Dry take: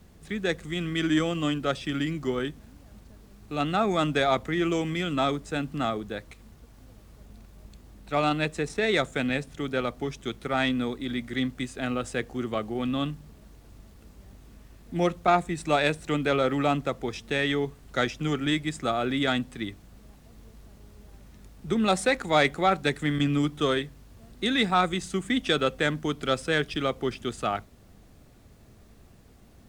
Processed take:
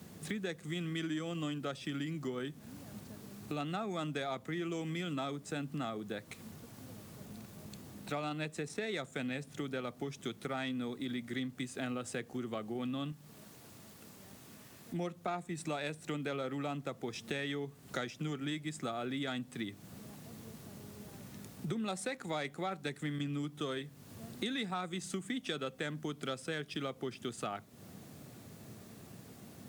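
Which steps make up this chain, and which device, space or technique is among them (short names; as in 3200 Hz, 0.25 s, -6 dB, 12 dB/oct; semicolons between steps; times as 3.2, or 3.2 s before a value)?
HPF 120 Hz 24 dB/oct; ASMR close-microphone chain (low shelf 170 Hz +6.5 dB; compressor 5:1, threshold -40 dBFS, peak gain reduction 21 dB; high shelf 6800 Hz +7 dB); 13.12–14.94 low shelf 440 Hz -8 dB; gain +2.5 dB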